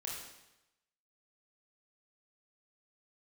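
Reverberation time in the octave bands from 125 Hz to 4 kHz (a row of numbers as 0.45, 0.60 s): 1.0, 0.90, 0.90, 0.95, 0.90, 0.90 s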